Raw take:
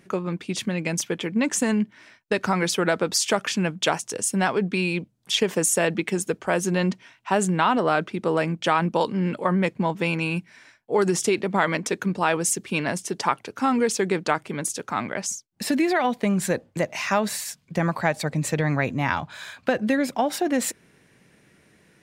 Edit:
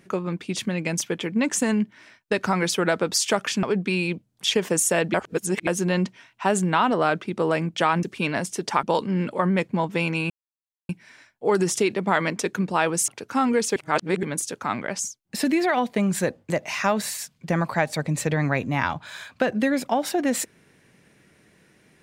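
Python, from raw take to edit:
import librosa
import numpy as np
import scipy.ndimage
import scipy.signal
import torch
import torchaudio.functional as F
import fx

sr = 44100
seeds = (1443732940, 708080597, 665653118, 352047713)

y = fx.edit(x, sr, fx.cut(start_s=3.63, length_s=0.86),
    fx.reverse_span(start_s=6.0, length_s=0.53),
    fx.insert_silence(at_s=10.36, length_s=0.59),
    fx.move(start_s=12.55, length_s=0.8, to_s=8.89),
    fx.reverse_span(start_s=14.03, length_s=0.47), tone=tone)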